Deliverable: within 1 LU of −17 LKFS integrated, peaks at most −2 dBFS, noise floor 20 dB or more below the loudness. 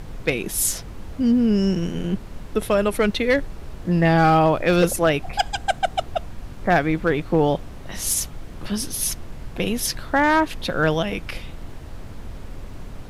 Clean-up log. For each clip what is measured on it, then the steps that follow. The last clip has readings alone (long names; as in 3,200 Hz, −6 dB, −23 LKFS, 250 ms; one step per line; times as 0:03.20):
share of clipped samples 0.6%; peaks flattened at −9.5 dBFS; background noise floor −37 dBFS; target noise floor −42 dBFS; integrated loudness −21.5 LKFS; sample peak −9.5 dBFS; target loudness −17.0 LKFS
→ clipped peaks rebuilt −9.5 dBFS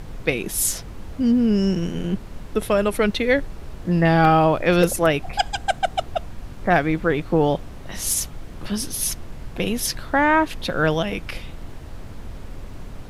share of clipped samples 0.0%; background noise floor −37 dBFS; target noise floor −42 dBFS
→ noise reduction from a noise print 6 dB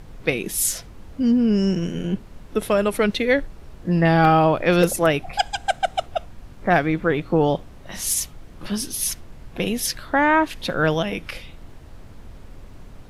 background noise floor −43 dBFS; integrated loudness −21.5 LKFS; sample peak −2.5 dBFS; target loudness −17.0 LKFS
→ level +4.5 dB
brickwall limiter −2 dBFS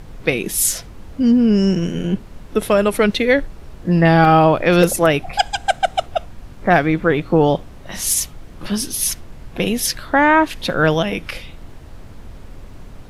integrated loudness −17.0 LKFS; sample peak −2.0 dBFS; background noise floor −38 dBFS